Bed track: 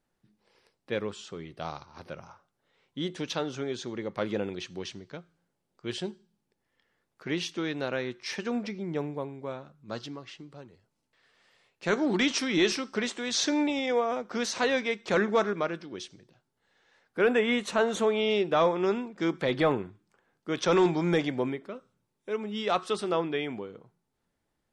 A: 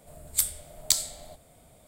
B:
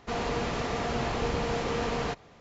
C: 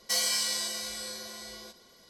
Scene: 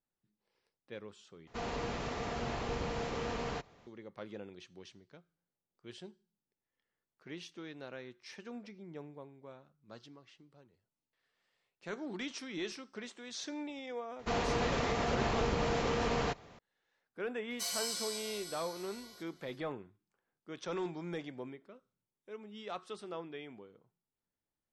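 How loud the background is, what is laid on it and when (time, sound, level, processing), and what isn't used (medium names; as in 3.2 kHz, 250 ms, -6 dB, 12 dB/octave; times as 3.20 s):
bed track -15 dB
1.47 s: replace with B -7.5 dB
14.19 s: add B -1.5 dB + peak limiter -21.5 dBFS
17.50 s: add C -12 dB + comb 7 ms, depth 100%
not used: A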